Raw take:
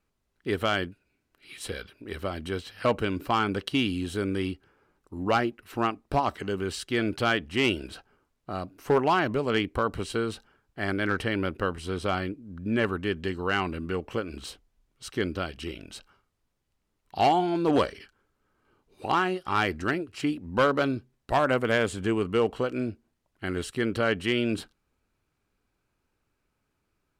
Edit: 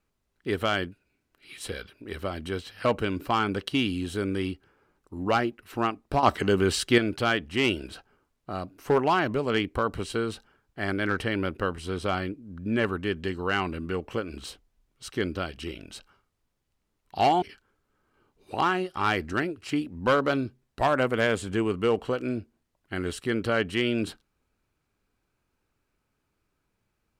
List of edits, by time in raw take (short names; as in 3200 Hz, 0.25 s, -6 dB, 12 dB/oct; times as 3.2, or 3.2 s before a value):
6.23–6.98 gain +7.5 dB
17.42–17.93 cut